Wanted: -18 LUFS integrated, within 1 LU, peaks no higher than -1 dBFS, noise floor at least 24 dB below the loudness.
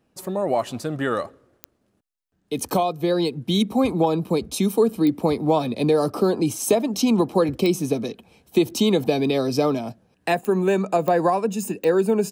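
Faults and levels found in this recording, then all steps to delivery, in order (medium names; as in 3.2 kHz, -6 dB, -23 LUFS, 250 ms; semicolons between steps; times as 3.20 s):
clicks found 6; loudness -22.0 LUFS; peak level -6.5 dBFS; loudness target -18.0 LUFS
-> de-click; trim +4 dB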